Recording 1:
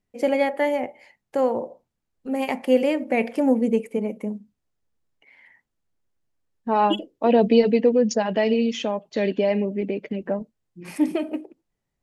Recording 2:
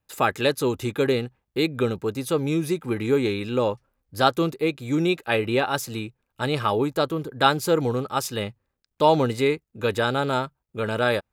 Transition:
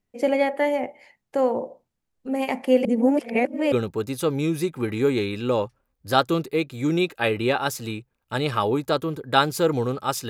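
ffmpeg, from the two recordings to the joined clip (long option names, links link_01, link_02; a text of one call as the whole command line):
ffmpeg -i cue0.wav -i cue1.wav -filter_complex "[0:a]apad=whole_dur=10.29,atrim=end=10.29,asplit=2[link_01][link_02];[link_01]atrim=end=2.852[link_03];[link_02]atrim=start=2.848:end=3.722,asetpts=PTS-STARTPTS,areverse[link_04];[1:a]atrim=start=1.798:end=8.37[link_05];[link_03][link_04]acrossfade=duration=0.004:curve1=hsin:curve2=hsin[link_06];[link_06][link_05]acrossfade=duration=0.004:curve1=hsin:curve2=hsin" out.wav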